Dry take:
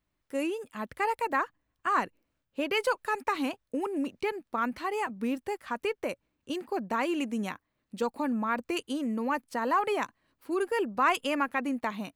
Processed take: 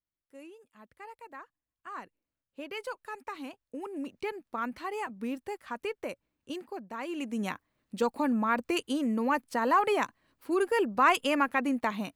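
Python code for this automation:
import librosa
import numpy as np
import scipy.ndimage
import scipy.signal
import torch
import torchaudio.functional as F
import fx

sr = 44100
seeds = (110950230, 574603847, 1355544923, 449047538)

y = fx.gain(x, sr, db=fx.line((1.44, -18.0), (2.6, -10.5), (3.49, -10.5), (4.22, -4.0), (6.56, -4.0), (6.89, -11.0), (7.52, 2.0)))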